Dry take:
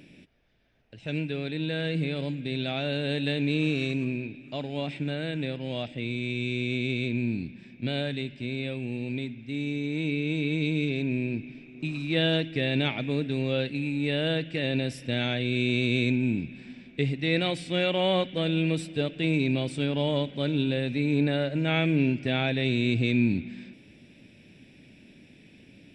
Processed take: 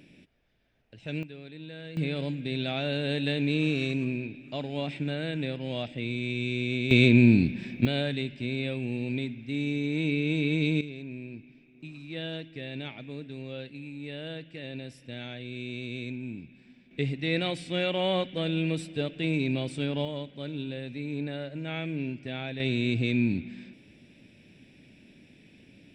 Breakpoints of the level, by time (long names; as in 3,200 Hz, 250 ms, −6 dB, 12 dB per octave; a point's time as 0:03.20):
−3 dB
from 0:01.23 −12.5 dB
from 0:01.97 −0.5 dB
from 0:06.91 +10.5 dB
from 0:07.85 +1 dB
from 0:10.81 −11.5 dB
from 0:16.91 −2.5 dB
from 0:20.05 −9 dB
from 0:22.60 −2 dB